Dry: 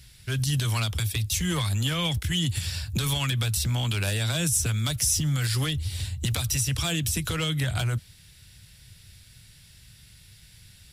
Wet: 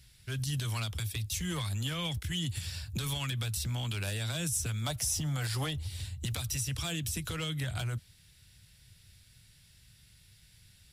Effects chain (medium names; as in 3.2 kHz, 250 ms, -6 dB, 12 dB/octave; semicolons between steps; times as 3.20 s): 4.82–5.87 s: peaking EQ 750 Hz +11.5 dB 1.1 oct; trim -8 dB